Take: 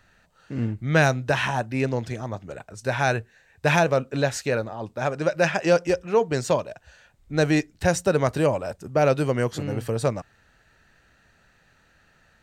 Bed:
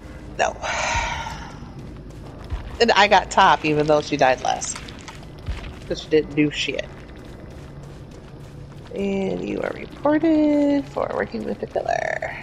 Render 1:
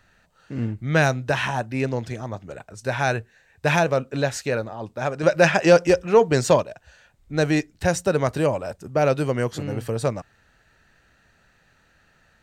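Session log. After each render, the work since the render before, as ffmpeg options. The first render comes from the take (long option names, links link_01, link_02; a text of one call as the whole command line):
ffmpeg -i in.wav -filter_complex "[0:a]asettb=1/sr,asplit=3[link_01][link_02][link_03];[link_01]atrim=end=5.234[link_04];[link_02]atrim=start=5.23:end=6.63,asetpts=PTS-STARTPTS,afade=type=in:duration=0.004:curve=qsin,afade=type=out:start_time=1.396:duration=0.004:curve=qsin,acontrast=38[link_05];[link_03]atrim=start=6.626[link_06];[link_04][link_05]acrossfade=duration=0.004:curve1=hsin:curve2=qsin[link_07];[link_07][link_06]acrossfade=duration=0.004:curve1=qsin:curve2=hsin" out.wav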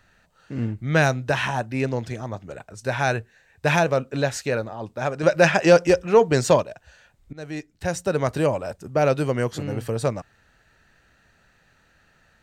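ffmpeg -i in.wav -filter_complex "[0:a]asplit=2[link_01][link_02];[link_01]atrim=end=7.33,asetpts=PTS-STARTPTS,afade=type=out:start_time=7.326:duration=0.004:curve=hsin:silence=0.0794328[link_03];[link_02]atrim=start=7.33,asetpts=PTS-STARTPTS,afade=type=in:duration=1.03:silence=0.0794328[link_04];[link_03][link_04]concat=n=2:v=0:a=1" out.wav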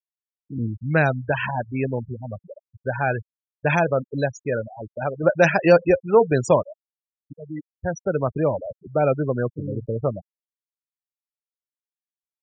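ffmpeg -i in.wav -af "afftfilt=real='re*gte(hypot(re,im),0.1)':imag='im*gte(hypot(re,im),0.1)':win_size=1024:overlap=0.75" out.wav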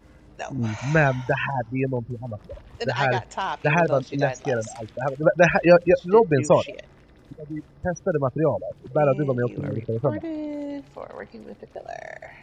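ffmpeg -i in.wav -i bed.wav -filter_complex "[1:a]volume=-13.5dB[link_01];[0:a][link_01]amix=inputs=2:normalize=0" out.wav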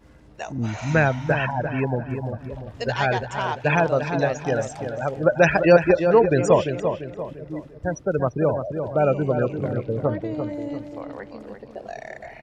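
ffmpeg -i in.wav -filter_complex "[0:a]asplit=2[link_01][link_02];[link_02]adelay=344,lowpass=frequency=2000:poles=1,volume=-7dB,asplit=2[link_03][link_04];[link_04]adelay=344,lowpass=frequency=2000:poles=1,volume=0.43,asplit=2[link_05][link_06];[link_06]adelay=344,lowpass=frequency=2000:poles=1,volume=0.43,asplit=2[link_07][link_08];[link_08]adelay=344,lowpass=frequency=2000:poles=1,volume=0.43,asplit=2[link_09][link_10];[link_10]adelay=344,lowpass=frequency=2000:poles=1,volume=0.43[link_11];[link_01][link_03][link_05][link_07][link_09][link_11]amix=inputs=6:normalize=0" out.wav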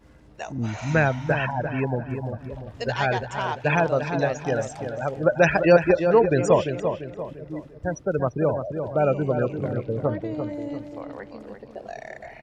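ffmpeg -i in.wav -af "volume=-1.5dB" out.wav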